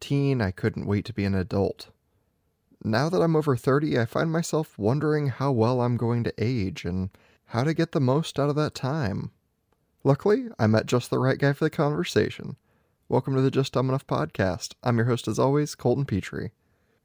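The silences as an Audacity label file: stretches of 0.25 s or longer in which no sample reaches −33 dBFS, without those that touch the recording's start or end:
1.830000	2.820000	silence
7.150000	7.530000	silence
9.270000	10.050000	silence
12.530000	13.110000	silence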